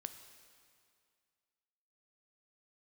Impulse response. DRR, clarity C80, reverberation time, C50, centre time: 8.0 dB, 10.5 dB, 2.2 s, 9.5 dB, 22 ms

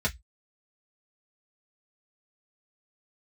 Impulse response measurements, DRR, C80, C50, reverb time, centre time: -4.5 dB, 36.5 dB, 23.0 dB, 0.10 s, 8 ms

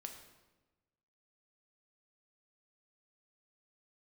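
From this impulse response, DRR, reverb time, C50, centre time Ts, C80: 3.5 dB, 1.2 s, 7.0 dB, 25 ms, 9.0 dB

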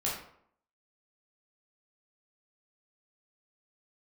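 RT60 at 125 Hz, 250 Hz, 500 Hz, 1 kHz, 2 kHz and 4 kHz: 0.60 s, 0.65 s, 0.65 s, 0.65 s, 0.50 s, 0.40 s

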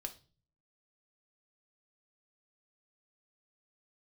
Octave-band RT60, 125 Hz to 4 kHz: 0.75 s, 0.60 s, 0.40 s, 0.30 s, 0.30 s, 0.35 s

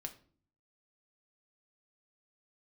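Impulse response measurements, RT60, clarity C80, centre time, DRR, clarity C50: 0.45 s, 18.5 dB, 8 ms, 4.5 dB, 14.0 dB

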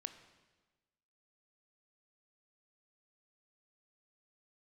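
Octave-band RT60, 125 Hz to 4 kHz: 1.4 s, 1.3 s, 1.3 s, 1.2 s, 1.2 s, 1.1 s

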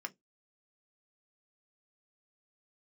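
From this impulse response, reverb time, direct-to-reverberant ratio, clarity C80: 0.15 s, 6.0 dB, 38.5 dB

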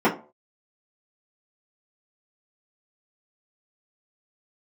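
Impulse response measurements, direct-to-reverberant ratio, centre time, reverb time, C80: -9.0 dB, 19 ms, 0.40 s, 17.0 dB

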